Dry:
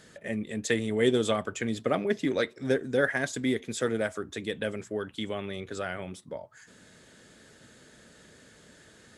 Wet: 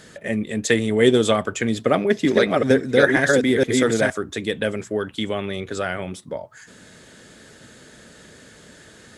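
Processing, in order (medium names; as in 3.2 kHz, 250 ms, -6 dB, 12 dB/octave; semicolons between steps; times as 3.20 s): 1.78–4.11 s: chunks repeated in reverse 464 ms, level -1.5 dB; trim +8.5 dB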